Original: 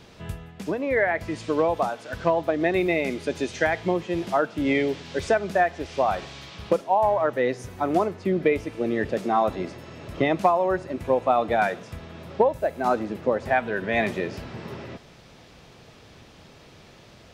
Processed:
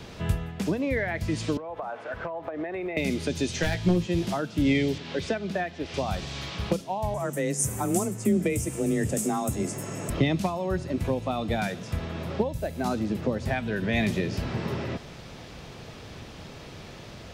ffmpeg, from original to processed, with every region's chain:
-filter_complex "[0:a]asettb=1/sr,asplit=3[a][b][c];[a]atrim=end=1.574[d];[b]atrim=start=1.57:end=2.97,asetpts=PTS-STARTPTS,afade=t=in:d=0.004:c=qsin,afade=t=out:st=1.396:d=0.004:c=qsin,acrossover=split=420 2300:gain=0.251 1 0.1[e][f][g];[e][f][g]amix=inputs=3:normalize=0,acompressor=threshold=-32dB:ratio=10:attack=3.2:release=140:knee=1:detection=peak[h];[c]atrim=start=2.966[i];[d][h]acrossfade=d=0.004:c1=hsin:c2=qsin[j];[j][i]acrossfade=d=0.004:c1=qsin:c2=hsin,asettb=1/sr,asplit=3[k][l][m];[k]atrim=end=3.624[n];[l]atrim=start=3.62:end=4.06,asetpts=PTS-STARTPTS,afade=t=in:d=0.004:c=qsin,afade=t=out:st=0.436:d=0.004:c=qsin,aeval=exprs='clip(val(0),-1,0.119)':c=same,bandreject=f=2.1k:w=14,asplit=2[o][p];[p]adelay=17,volume=-5.5dB[q];[o][q]amix=inputs=2:normalize=0,atrim=end_sample=19404[r];[m]atrim=start=4.056[s];[n][r]acrossfade=d=0.004:c1=hsin:c2=qsin[t];[t][s]acrossfade=d=0.004:c1=qsin:c2=hsin,asettb=1/sr,asplit=3[u][v][w];[u]atrim=end=4.984[x];[v]atrim=start=4.98:end=5.94,asetpts=PTS-STARTPTS,afade=t=in:d=0.004:c=qsin,afade=t=out:st=0.956:d=0.004:c=qsin,highpass=44,acrossover=split=170 4300:gain=0.251 1 0.224[y][z][aa];[y][z][aa]amix=inputs=3:normalize=0[ab];[w]atrim=start=5.936[ac];[x][ab]acrossfade=d=0.004:c1=hsin:c2=qsin[ad];[ad][ac]acrossfade=d=0.004:c1=qsin:c2=hsin,asettb=1/sr,asplit=3[ae][af][ag];[ae]atrim=end=7.144[ah];[af]atrim=start=7.14:end=10.1,asetpts=PTS-STARTPTS,afade=t=in:d=0.004:c=qsin,afade=t=out:st=2.956:d=0.004:c=qsin,highshelf=f=5.8k:t=q:w=3:g=12.5,afreqshift=21[ai];[ag]atrim=start=10.096[aj];[ah][ai]acrossfade=d=0.004:c1=hsin:c2=qsin[ak];[ak][aj]acrossfade=d=0.004:c1=qsin:c2=hsin,lowshelf=f=200:g=3.5,acrossover=split=240|3000[al][am][an];[am]acompressor=threshold=-36dB:ratio=6[ao];[al][ao][an]amix=inputs=3:normalize=0,volume=5.5dB"

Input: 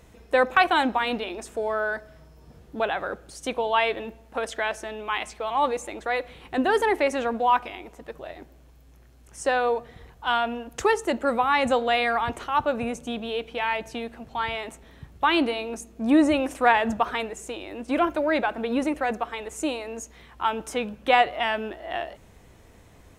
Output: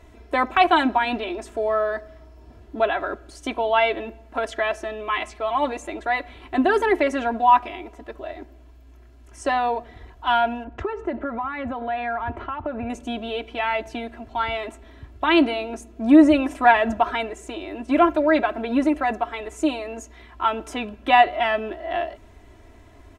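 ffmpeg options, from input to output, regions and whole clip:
-filter_complex "[0:a]asettb=1/sr,asplit=3[a][b][c];[a]atrim=end=10.644[d];[b]atrim=start=10.64:end=12.9,asetpts=PTS-STARTPTS,afade=t=in:d=0.004:c=qsin,afade=t=out:st=2.256:d=0.004:c=qsin,lowpass=2k,equalizer=f=89:t=o:w=1:g=7,acompressor=threshold=-26dB:ratio=12:attack=3.2:release=140:knee=1:detection=peak[e];[c]atrim=start=12.896[f];[d][e]acrossfade=d=0.004:c1=hsin:c2=qsin[g];[g][f]acrossfade=d=0.004:c1=qsin:c2=hsin,highshelf=f=5.6k:g=-11.5,aecho=1:1:3:0.85,volume=1.5dB"

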